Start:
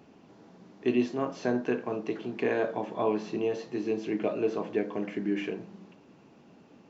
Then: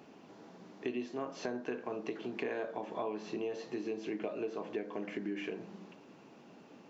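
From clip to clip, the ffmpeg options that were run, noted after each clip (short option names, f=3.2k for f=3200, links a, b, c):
-af "highpass=f=250:p=1,acompressor=threshold=-38dB:ratio=4,volume=2dB"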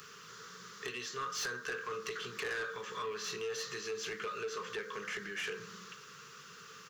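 -af "firequalizer=gain_entry='entry(150,0);entry(290,-26);entry(440,1);entry(680,-28);entry(1200,14);entry(4100,-6)':delay=0.05:min_phase=1,aexciter=amount=11.1:drive=4.8:freq=3.6k,asoftclip=type=tanh:threshold=-36dB,volume=3dB"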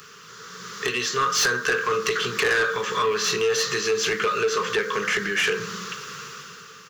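-af "dynaudnorm=f=120:g=11:m=10dB,volume=6.5dB"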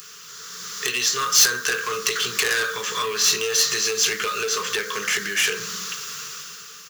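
-af "crystalizer=i=5.5:c=0,acrusher=bits=4:mode=log:mix=0:aa=0.000001,volume=-6dB"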